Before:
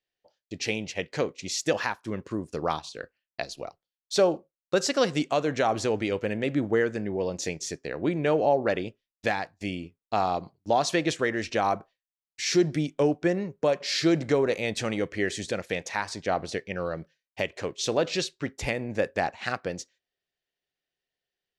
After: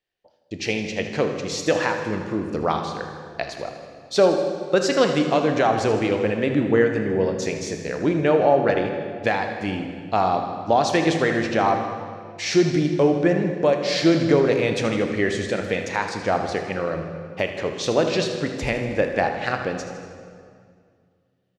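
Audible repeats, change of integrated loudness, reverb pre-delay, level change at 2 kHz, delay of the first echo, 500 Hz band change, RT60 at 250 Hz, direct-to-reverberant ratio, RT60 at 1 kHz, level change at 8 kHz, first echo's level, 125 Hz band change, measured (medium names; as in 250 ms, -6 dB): 3, +6.0 dB, 18 ms, +5.5 dB, 79 ms, +6.5 dB, 2.6 s, 4.5 dB, 2.0 s, +0.5 dB, -12.0 dB, +7.0 dB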